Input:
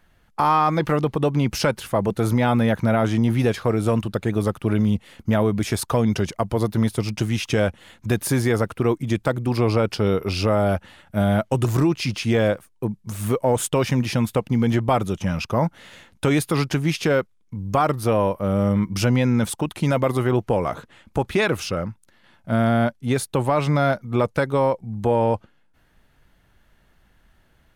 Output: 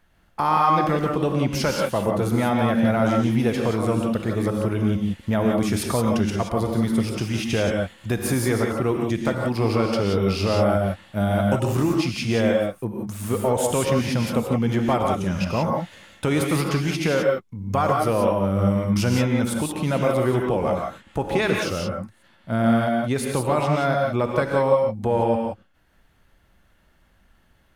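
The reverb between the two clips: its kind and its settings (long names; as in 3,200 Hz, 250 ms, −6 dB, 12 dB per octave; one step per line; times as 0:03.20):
reverb whose tail is shaped and stops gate 200 ms rising, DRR 0.5 dB
level −3 dB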